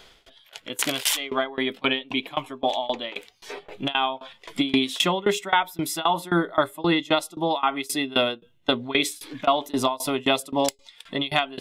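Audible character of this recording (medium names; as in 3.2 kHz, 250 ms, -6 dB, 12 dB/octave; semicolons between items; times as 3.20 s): tremolo saw down 3.8 Hz, depth 95%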